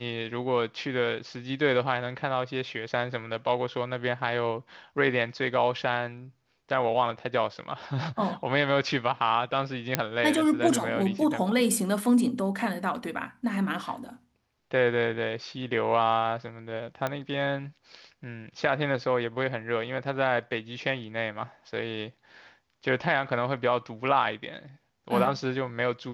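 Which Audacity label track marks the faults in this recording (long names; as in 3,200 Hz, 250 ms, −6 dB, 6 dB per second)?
9.950000	9.950000	click −6 dBFS
17.070000	17.070000	click −15 dBFS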